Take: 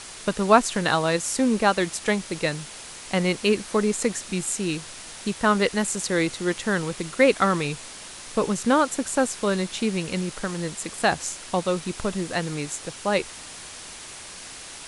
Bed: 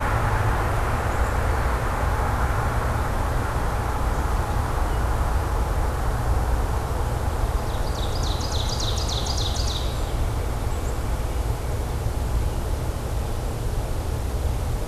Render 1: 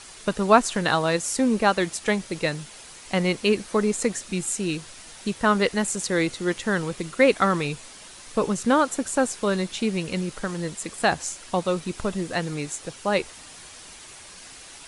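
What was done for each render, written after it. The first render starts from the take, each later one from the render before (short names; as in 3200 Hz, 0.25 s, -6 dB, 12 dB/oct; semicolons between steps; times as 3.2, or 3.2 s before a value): denoiser 6 dB, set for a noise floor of -41 dBFS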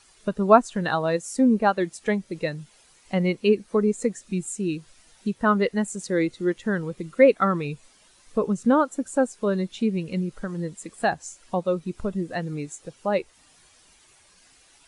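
in parallel at -0.5 dB: compressor, threshold -30 dBFS, peak gain reduction 19 dB; on the sum: spectral expander 1.5:1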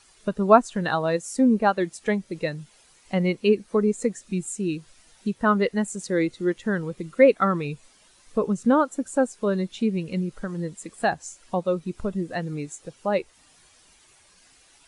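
nothing audible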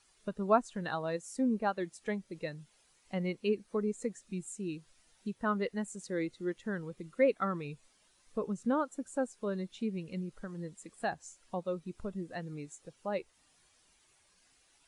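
gain -11.5 dB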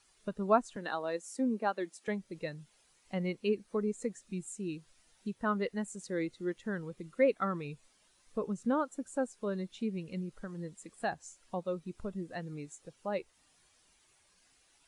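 0.76–2.08 HPF 220 Hz 24 dB/oct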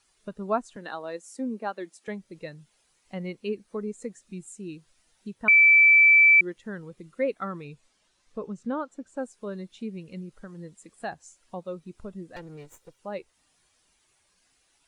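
5.48–6.41 bleep 2320 Hz -12.5 dBFS; 7.64–9.16 LPF 9600 Hz -> 5000 Hz; 12.36–12.99 minimum comb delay 2.1 ms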